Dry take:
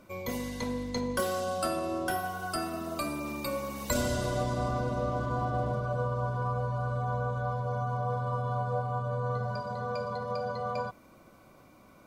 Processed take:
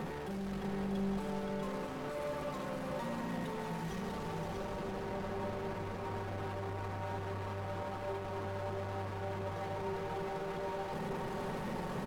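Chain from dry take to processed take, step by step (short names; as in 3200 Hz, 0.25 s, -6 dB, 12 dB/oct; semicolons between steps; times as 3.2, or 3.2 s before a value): infinite clipping; LPF 1400 Hz 6 dB/oct; bell 70 Hz -7 dB 0.62 oct; comb 4.3 ms, depth 50%; limiter -35.5 dBFS, peak gain reduction 8 dB; pitch shift -4 st; tapped delay 0.52/0.642 s -7.5/-5 dB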